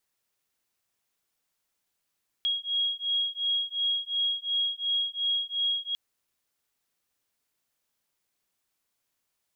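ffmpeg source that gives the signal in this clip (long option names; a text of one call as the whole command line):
ffmpeg -f lavfi -i "aevalsrc='0.0355*(sin(2*PI*3290*t)+sin(2*PI*3292.8*t))':duration=3.5:sample_rate=44100" out.wav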